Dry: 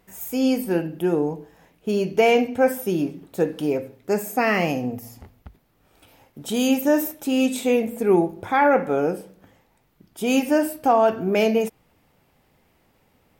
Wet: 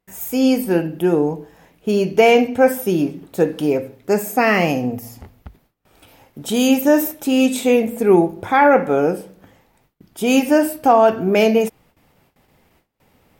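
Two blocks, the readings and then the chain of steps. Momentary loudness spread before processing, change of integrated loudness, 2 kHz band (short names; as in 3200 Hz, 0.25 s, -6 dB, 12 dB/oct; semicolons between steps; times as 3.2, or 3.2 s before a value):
10 LU, +5.0 dB, +5.0 dB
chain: gate with hold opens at -52 dBFS; gain +5 dB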